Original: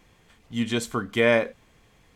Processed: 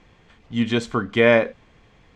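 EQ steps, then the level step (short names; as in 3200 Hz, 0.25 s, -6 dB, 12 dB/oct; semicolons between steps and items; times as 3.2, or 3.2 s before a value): air absorption 120 m; +5.0 dB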